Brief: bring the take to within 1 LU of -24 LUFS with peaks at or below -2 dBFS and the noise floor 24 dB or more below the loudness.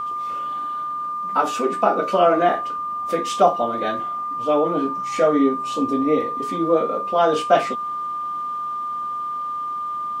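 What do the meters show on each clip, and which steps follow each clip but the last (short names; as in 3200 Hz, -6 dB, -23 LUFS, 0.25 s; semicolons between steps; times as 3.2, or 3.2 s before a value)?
steady tone 1200 Hz; tone level -24 dBFS; loudness -21.5 LUFS; peak -4.0 dBFS; loudness target -24.0 LUFS
-> notch 1200 Hz, Q 30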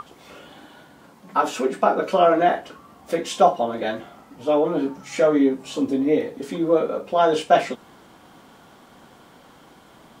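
steady tone none; loudness -21.5 LUFS; peak -3.5 dBFS; loudness target -24.0 LUFS
-> gain -2.5 dB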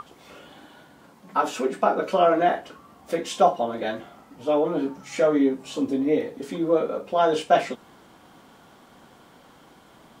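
loudness -24.0 LUFS; peak -6.0 dBFS; noise floor -53 dBFS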